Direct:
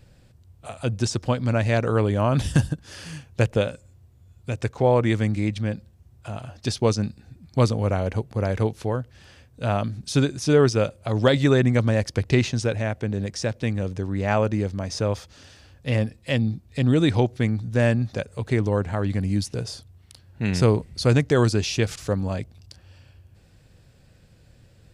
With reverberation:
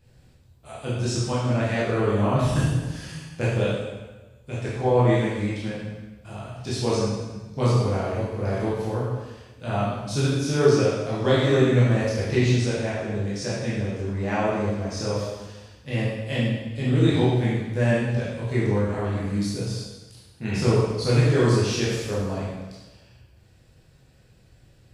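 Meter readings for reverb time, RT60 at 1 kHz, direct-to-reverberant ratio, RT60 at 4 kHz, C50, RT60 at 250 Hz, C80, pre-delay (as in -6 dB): 1.2 s, 1.2 s, -9.0 dB, 1.1 s, -1.5 dB, 1.2 s, 1.5 dB, 8 ms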